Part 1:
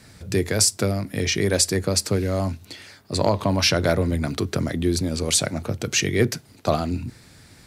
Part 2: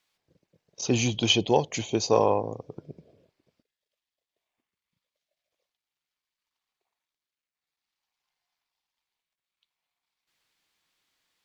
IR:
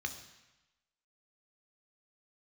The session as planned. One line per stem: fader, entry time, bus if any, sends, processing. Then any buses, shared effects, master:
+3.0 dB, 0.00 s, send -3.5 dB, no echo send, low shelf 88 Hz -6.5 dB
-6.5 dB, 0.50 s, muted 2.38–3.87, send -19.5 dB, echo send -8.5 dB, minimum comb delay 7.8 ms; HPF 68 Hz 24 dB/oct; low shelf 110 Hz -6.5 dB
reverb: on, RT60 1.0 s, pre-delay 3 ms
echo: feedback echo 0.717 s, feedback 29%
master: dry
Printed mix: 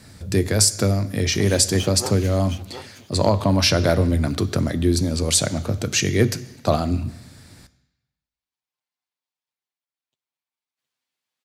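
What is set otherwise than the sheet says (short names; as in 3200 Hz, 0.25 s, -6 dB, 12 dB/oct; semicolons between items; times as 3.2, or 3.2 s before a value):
stem 1: missing low shelf 88 Hz -6.5 dB; reverb return -7.0 dB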